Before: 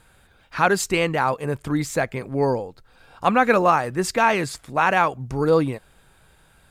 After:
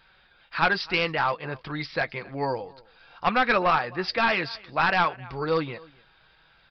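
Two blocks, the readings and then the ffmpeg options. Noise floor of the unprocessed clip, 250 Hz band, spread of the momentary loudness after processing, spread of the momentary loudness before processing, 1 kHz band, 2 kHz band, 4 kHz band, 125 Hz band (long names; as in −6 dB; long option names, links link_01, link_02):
−57 dBFS, −8.5 dB, 12 LU, 9 LU, −4.5 dB, −1.0 dB, +2.0 dB, −8.0 dB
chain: -af "tiltshelf=frequency=750:gain=-6.5,flanger=delay=5.2:depth=1.2:regen=-51:speed=0.56:shape=triangular,aecho=1:1:262:0.0631,aresample=11025,aeval=exprs='clip(val(0),-1,0.126)':channel_layout=same,aresample=44100"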